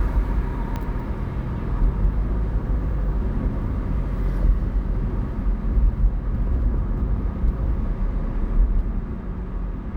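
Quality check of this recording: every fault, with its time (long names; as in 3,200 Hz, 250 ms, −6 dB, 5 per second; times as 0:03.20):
0:00.76: click −16 dBFS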